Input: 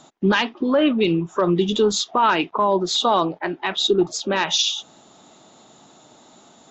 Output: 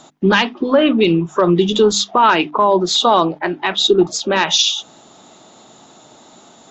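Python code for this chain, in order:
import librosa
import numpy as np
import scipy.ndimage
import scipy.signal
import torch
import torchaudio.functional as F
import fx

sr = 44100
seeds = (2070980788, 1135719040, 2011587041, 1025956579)

y = fx.hum_notches(x, sr, base_hz=50, count=6)
y = y * 10.0 ** (5.5 / 20.0)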